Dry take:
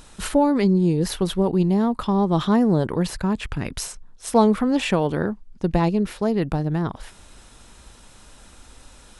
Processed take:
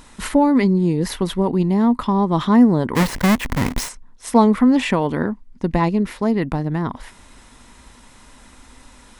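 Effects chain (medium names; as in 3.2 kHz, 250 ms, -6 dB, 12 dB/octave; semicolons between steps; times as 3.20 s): 2.95–3.89 s: square wave that keeps the level; graphic EQ with 31 bands 250 Hz +9 dB, 1 kHz +7 dB, 2 kHz +8 dB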